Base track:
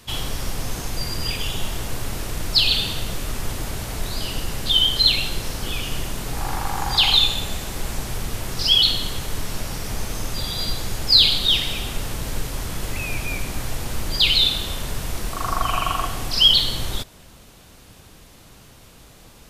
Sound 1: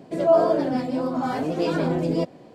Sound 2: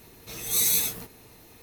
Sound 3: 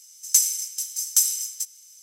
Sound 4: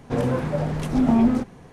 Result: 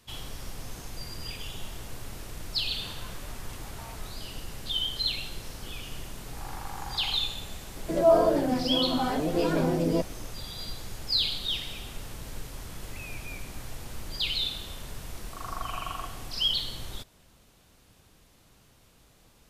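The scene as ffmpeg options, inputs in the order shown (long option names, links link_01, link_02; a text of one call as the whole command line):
ffmpeg -i bed.wav -i cue0.wav -i cue1.wav -i cue2.wav -i cue3.wav -filter_complex "[0:a]volume=-12.5dB[link_01];[4:a]highpass=frequency=920:width=0.5412,highpass=frequency=920:width=1.3066,atrim=end=1.72,asetpts=PTS-STARTPTS,volume=-13dB,afade=type=in:duration=0.004:curve=hsin,afade=type=out:start_time=1.716:duration=0.004:curve=hsin,adelay=2700[link_02];[1:a]atrim=end=2.54,asetpts=PTS-STARTPTS,volume=-2.5dB,afade=type=in:duration=0.004:curve=hsin,afade=type=out:start_time=2.536:duration=0.004:curve=hsin,adelay=7770[link_03];[link_01][link_02][link_03]amix=inputs=3:normalize=0" out.wav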